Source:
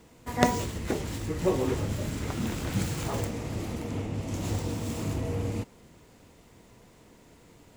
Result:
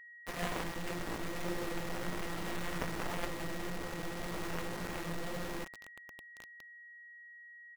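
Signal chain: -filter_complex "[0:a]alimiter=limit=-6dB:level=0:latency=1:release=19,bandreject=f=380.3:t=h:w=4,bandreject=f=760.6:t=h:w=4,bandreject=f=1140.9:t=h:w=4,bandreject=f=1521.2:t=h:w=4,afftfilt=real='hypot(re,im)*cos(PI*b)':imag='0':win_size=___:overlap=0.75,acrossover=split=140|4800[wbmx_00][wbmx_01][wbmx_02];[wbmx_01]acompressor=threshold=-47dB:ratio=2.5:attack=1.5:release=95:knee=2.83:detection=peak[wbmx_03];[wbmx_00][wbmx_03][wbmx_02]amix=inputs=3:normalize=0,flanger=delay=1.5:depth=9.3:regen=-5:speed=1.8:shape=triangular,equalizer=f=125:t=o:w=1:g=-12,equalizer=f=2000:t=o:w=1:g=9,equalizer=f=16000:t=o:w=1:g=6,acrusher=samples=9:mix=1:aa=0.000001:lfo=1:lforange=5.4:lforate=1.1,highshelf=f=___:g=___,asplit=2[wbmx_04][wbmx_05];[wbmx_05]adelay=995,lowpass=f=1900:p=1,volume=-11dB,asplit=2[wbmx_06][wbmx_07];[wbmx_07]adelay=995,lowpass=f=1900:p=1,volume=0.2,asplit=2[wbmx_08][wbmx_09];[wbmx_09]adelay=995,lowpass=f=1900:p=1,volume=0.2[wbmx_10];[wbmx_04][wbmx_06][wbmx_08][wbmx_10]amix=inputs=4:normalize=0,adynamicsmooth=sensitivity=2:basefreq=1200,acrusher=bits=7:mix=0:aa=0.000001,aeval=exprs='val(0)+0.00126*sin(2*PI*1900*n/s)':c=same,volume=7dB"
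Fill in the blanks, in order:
1024, 3200, 9.5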